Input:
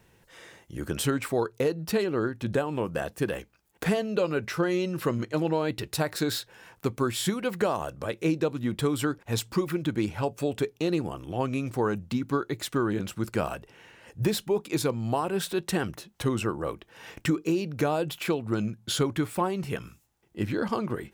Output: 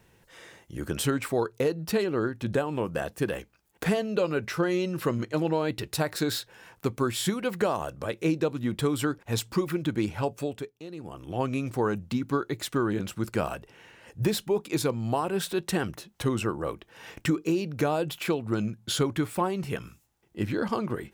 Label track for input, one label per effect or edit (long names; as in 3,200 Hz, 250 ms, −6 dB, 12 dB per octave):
10.310000	11.360000	duck −14.5 dB, fades 0.41 s